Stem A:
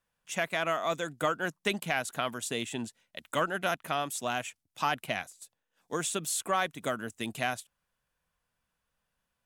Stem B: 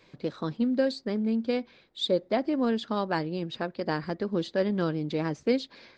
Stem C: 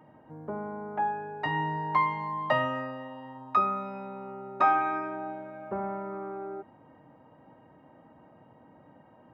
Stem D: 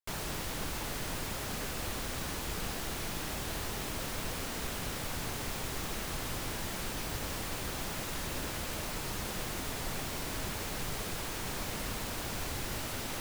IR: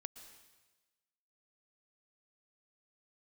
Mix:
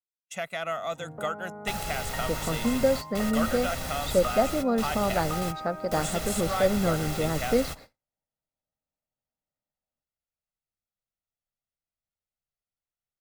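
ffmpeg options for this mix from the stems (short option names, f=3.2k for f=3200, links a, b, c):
-filter_complex "[0:a]volume=-4dB,asplit=2[a][b];[1:a]equalizer=f=3k:w=1.7:g=-14.5,adelay=2050,volume=2dB[c];[2:a]acompressor=threshold=-37dB:ratio=6,adelay=700,volume=0dB[d];[3:a]adelay=1600,volume=1.5dB[e];[b]apad=whole_len=653009[f];[e][f]sidechaingate=range=-22dB:threshold=-58dB:ratio=16:detection=peak[g];[a][c][d][g]amix=inputs=4:normalize=0,agate=range=-43dB:threshold=-45dB:ratio=16:detection=peak,aecho=1:1:1.5:0.49"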